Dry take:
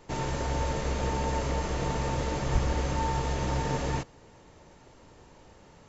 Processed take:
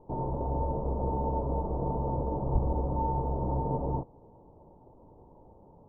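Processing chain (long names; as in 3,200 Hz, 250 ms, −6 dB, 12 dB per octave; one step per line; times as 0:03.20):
elliptic low-pass filter 940 Hz, stop band 50 dB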